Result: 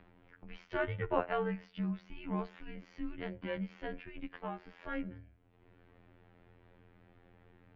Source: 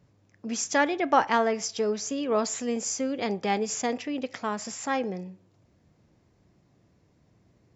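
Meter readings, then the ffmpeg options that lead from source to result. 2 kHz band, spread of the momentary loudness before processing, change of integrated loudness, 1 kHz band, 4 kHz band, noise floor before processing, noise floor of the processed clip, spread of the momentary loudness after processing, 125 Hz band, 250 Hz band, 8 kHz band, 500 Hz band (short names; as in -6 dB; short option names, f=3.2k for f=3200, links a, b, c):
-11.5 dB, 10 LU, -11.5 dB, -14.5 dB, -17.5 dB, -65 dBFS, -66 dBFS, 16 LU, +1.0 dB, -10.0 dB, n/a, -11.5 dB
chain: -af "afftfilt=real='hypot(re,im)*cos(PI*b)':imag='0':win_size=2048:overlap=0.75,highpass=f=260:t=q:w=0.5412,highpass=f=260:t=q:w=1.307,lowpass=f=3.3k:t=q:w=0.5176,lowpass=f=3.3k:t=q:w=0.7071,lowpass=f=3.3k:t=q:w=1.932,afreqshift=-240,acompressor=mode=upward:threshold=-39dB:ratio=2.5,volume=-6.5dB"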